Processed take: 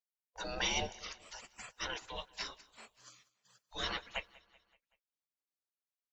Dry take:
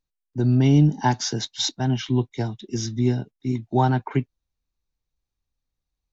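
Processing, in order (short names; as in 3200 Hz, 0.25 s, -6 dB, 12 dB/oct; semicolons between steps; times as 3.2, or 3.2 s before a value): gate -42 dBFS, range -16 dB; 2.61–3.73 HPF 660 Hz 24 dB/oct; spectral gate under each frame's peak -30 dB weak; 0.86–1.75 compressor 5:1, threshold -51 dBFS, peak gain reduction 12.5 dB; feedback echo 0.19 s, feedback 52%, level -22 dB; gain +6 dB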